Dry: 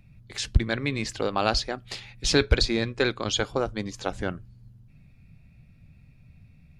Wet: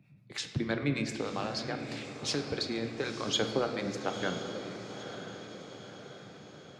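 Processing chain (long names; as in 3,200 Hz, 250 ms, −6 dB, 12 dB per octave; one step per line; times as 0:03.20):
high-pass filter 130 Hz 24 dB per octave
high-shelf EQ 4,900 Hz −6.5 dB
0:01.10–0:03.29: downward compressor, threshold −28 dBFS, peak gain reduction 12.5 dB
two-band tremolo in antiphase 6.7 Hz, depth 70%, crossover 600 Hz
soft clipping −14 dBFS, distortion −30 dB
feedback delay with all-pass diffusion 958 ms, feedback 53%, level −9.5 dB
convolution reverb RT60 2.5 s, pre-delay 7 ms, DRR 5.5 dB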